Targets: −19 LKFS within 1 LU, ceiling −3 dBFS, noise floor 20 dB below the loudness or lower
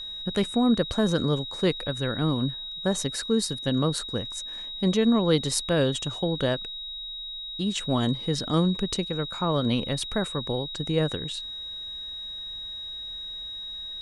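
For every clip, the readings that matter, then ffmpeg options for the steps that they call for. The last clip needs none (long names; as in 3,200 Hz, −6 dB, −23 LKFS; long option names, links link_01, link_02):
interfering tone 3,800 Hz; level of the tone −34 dBFS; integrated loudness −27.0 LKFS; sample peak −9.5 dBFS; target loudness −19.0 LKFS
→ -af "bandreject=frequency=3800:width=30"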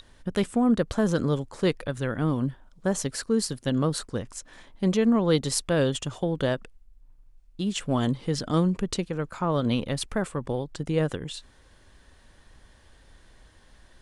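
interfering tone none found; integrated loudness −27.0 LKFS; sample peak −10.0 dBFS; target loudness −19.0 LKFS
→ -af "volume=8dB,alimiter=limit=-3dB:level=0:latency=1"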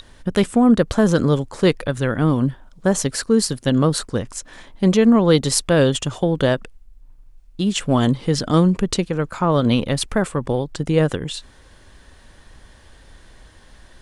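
integrated loudness −19.0 LKFS; sample peak −3.0 dBFS; background noise floor −48 dBFS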